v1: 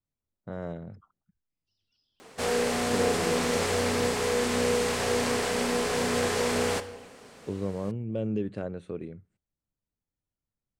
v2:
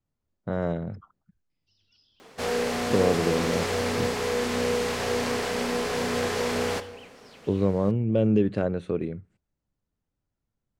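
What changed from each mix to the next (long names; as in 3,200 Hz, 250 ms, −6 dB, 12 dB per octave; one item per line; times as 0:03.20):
speech +8.5 dB
first sound +11.5 dB
master: add parametric band 8,600 Hz −6 dB 0.61 octaves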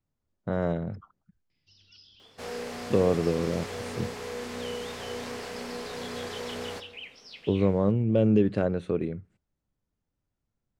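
first sound +10.0 dB
second sound −9.5 dB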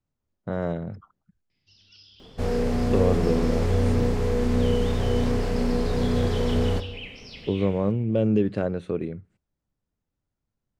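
first sound: send on
second sound: remove high-pass filter 1,400 Hz 6 dB per octave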